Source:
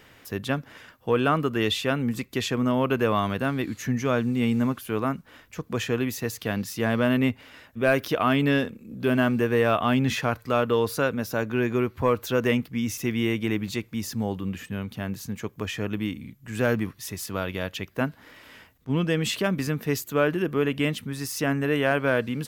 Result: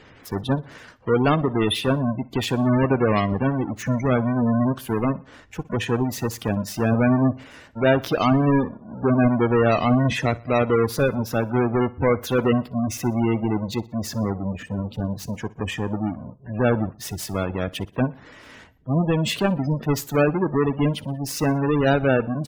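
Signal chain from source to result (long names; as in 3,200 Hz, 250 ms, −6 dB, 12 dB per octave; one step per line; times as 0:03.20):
each half-wave held at its own peak
gate on every frequency bin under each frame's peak −20 dB strong
repeating echo 61 ms, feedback 47%, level −21.5 dB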